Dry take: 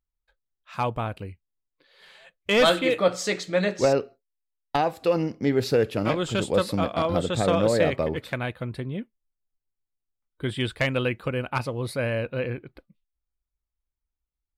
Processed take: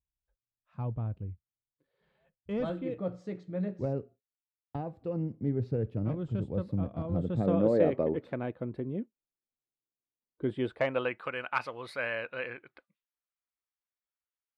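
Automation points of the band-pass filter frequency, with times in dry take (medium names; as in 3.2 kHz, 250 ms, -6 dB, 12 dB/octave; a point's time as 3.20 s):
band-pass filter, Q 1
7.03 s 100 Hz
7.77 s 330 Hz
10.48 s 330 Hz
11.34 s 1.6 kHz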